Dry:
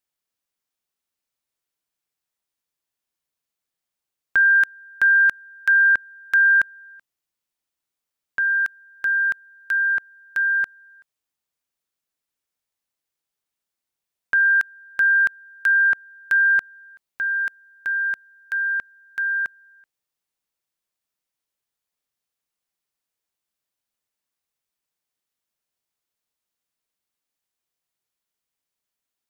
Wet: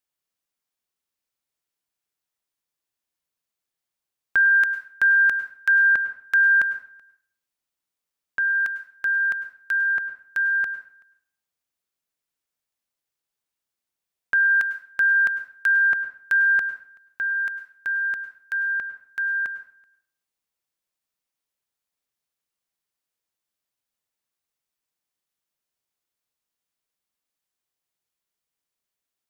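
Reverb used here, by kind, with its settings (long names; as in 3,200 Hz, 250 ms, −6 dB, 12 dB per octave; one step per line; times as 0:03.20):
dense smooth reverb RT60 0.53 s, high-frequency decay 0.75×, pre-delay 90 ms, DRR 11.5 dB
level −1.5 dB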